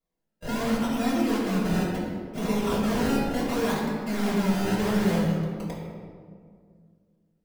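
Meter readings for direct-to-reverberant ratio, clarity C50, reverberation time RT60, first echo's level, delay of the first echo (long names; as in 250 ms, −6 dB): −8.5 dB, 0.5 dB, 2.1 s, no echo audible, no echo audible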